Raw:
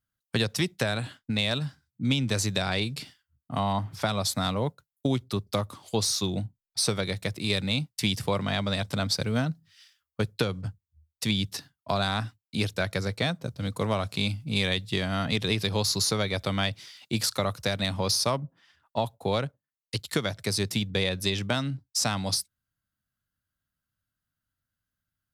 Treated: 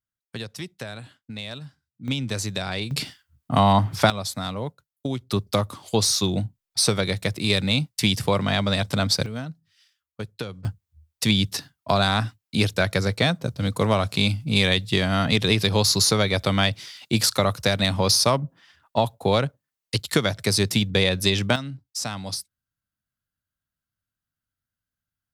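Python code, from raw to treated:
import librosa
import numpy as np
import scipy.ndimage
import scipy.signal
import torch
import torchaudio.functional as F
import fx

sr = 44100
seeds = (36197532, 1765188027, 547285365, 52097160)

y = fx.gain(x, sr, db=fx.steps((0.0, -8.0), (2.08, -1.0), (2.91, 10.0), (4.1, -2.0), (5.3, 5.5), (9.26, -5.5), (10.65, 6.5), (21.56, -3.0)))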